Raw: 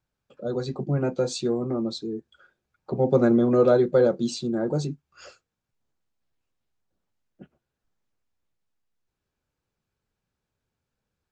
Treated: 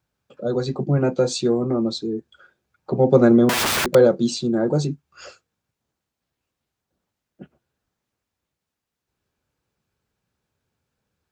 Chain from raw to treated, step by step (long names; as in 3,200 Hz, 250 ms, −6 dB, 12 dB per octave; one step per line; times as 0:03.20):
0:03.49–0:03.95: wrap-around overflow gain 22 dB
high-pass filter 52 Hz
level +5.5 dB